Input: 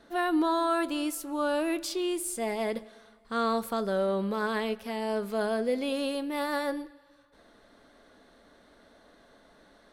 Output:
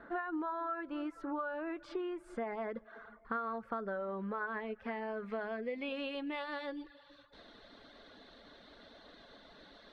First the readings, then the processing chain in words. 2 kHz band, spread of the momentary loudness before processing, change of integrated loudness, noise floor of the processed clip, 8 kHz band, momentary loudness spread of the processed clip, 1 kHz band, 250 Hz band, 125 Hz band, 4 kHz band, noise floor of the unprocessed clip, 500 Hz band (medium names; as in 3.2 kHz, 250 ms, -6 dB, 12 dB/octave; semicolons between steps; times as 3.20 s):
-6.0 dB, 6 LU, -9.5 dB, -60 dBFS, under -30 dB, 19 LU, -8.5 dB, -10.5 dB, no reading, -12.5 dB, -60 dBFS, -10.5 dB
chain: low-pass sweep 1.5 kHz -> 3.9 kHz, 4.51–7.31 s; compression 6:1, threshold -37 dBFS, peak gain reduction 17.5 dB; reverb removal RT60 0.57 s; trim +1.5 dB